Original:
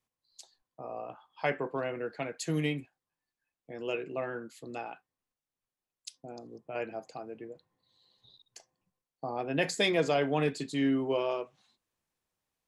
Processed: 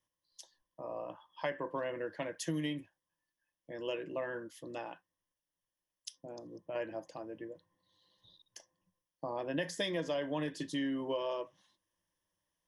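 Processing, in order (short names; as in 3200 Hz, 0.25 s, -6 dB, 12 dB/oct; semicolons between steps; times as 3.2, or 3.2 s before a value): ripple EQ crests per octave 1.2, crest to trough 11 dB; compressor 6:1, threshold -30 dBFS, peak gain reduction 10 dB; gain -2 dB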